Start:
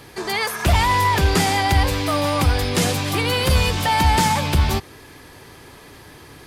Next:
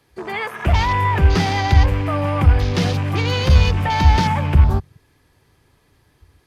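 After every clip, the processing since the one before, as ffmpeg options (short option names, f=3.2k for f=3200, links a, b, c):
-filter_complex "[0:a]afwtdn=0.0398,acrossover=split=150[a][b];[a]dynaudnorm=f=350:g=5:m=12dB[c];[c][b]amix=inputs=2:normalize=0,volume=-1.5dB"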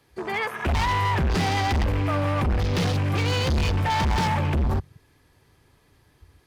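-af "asoftclip=type=hard:threshold=-18.5dB,volume=-1.5dB"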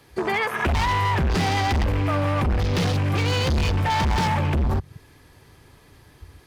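-af "acompressor=threshold=-29dB:ratio=6,volume=8.5dB"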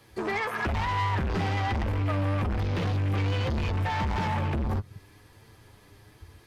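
-filter_complex "[0:a]flanger=delay=8.8:depth=1.3:regen=39:speed=1.1:shape=triangular,acrossover=split=2900[a][b];[b]acompressor=threshold=-46dB:ratio=4:attack=1:release=60[c];[a][c]amix=inputs=2:normalize=0,asoftclip=type=tanh:threshold=-24dB,volume=1dB"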